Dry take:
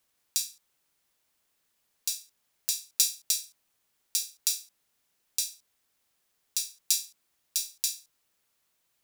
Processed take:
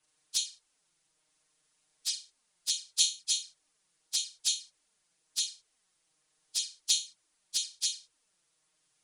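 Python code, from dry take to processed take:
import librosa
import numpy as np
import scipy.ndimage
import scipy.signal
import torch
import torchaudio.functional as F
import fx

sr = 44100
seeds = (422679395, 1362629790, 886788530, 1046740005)

y = fx.freq_compress(x, sr, knee_hz=2300.0, ratio=1.5)
y = fx.env_flanger(y, sr, rest_ms=6.6, full_db=-27.5)
y = y + 0.37 * np.pad(y, (int(6.5 * sr / 1000.0), 0))[:len(y)]
y = F.gain(torch.from_numpy(y), 2.5).numpy()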